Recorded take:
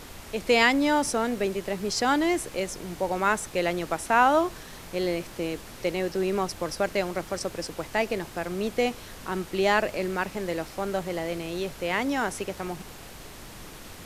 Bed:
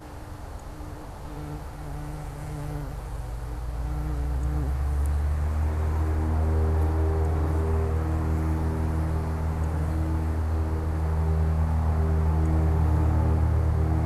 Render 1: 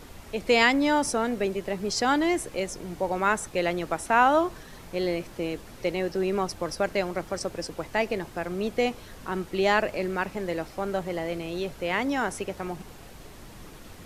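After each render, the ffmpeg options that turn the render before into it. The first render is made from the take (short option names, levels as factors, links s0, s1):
-af "afftdn=nr=6:nf=-44"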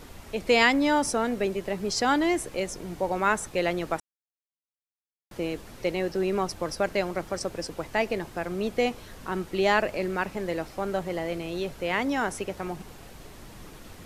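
-filter_complex "[0:a]asplit=3[s0][s1][s2];[s0]atrim=end=4,asetpts=PTS-STARTPTS,afade=t=out:st=3.996:d=0.004:c=hsin[s3];[s1]atrim=start=4:end=5.31,asetpts=PTS-STARTPTS,volume=0[s4];[s2]atrim=start=5.31,asetpts=PTS-STARTPTS,afade=t=in:d=0.004:c=hsin[s5];[s3][s4][s5]concat=n=3:v=0:a=1"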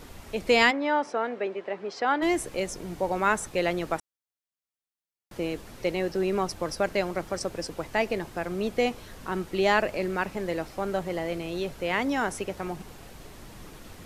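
-filter_complex "[0:a]asplit=3[s0][s1][s2];[s0]afade=t=out:st=0.7:d=0.02[s3];[s1]highpass=400,lowpass=2400,afade=t=in:st=0.7:d=0.02,afade=t=out:st=2.21:d=0.02[s4];[s2]afade=t=in:st=2.21:d=0.02[s5];[s3][s4][s5]amix=inputs=3:normalize=0"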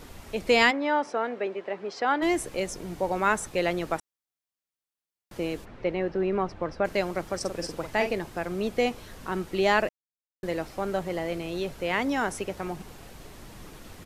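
-filter_complex "[0:a]asplit=3[s0][s1][s2];[s0]afade=t=out:st=5.64:d=0.02[s3];[s1]lowpass=2300,afade=t=in:st=5.64:d=0.02,afade=t=out:st=6.84:d=0.02[s4];[s2]afade=t=in:st=6.84:d=0.02[s5];[s3][s4][s5]amix=inputs=3:normalize=0,asplit=3[s6][s7][s8];[s6]afade=t=out:st=7.44:d=0.02[s9];[s7]asplit=2[s10][s11];[s11]adelay=47,volume=0.422[s12];[s10][s12]amix=inputs=2:normalize=0,afade=t=in:st=7.44:d=0.02,afade=t=out:st=8.11:d=0.02[s13];[s8]afade=t=in:st=8.11:d=0.02[s14];[s9][s13][s14]amix=inputs=3:normalize=0,asplit=3[s15][s16][s17];[s15]atrim=end=9.89,asetpts=PTS-STARTPTS,afade=t=out:st=9.886:d=0.004:c=hsin[s18];[s16]atrim=start=9.89:end=10.43,asetpts=PTS-STARTPTS,volume=0[s19];[s17]atrim=start=10.43,asetpts=PTS-STARTPTS,afade=t=in:d=0.004:c=hsin[s20];[s18][s19][s20]concat=n=3:v=0:a=1"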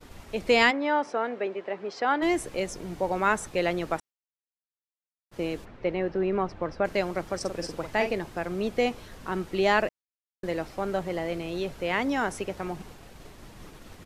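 -af "agate=range=0.0224:threshold=0.00794:ratio=3:detection=peak,highshelf=f=8300:g=-5.5"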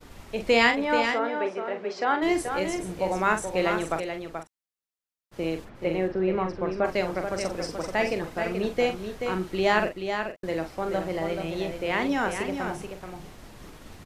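-filter_complex "[0:a]asplit=2[s0][s1];[s1]adelay=43,volume=0.398[s2];[s0][s2]amix=inputs=2:normalize=0,aecho=1:1:431:0.447"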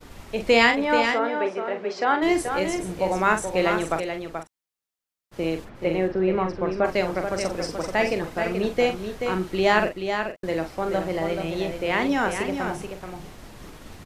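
-af "volume=1.41,alimiter=limit=0.794:level=0:latency=1"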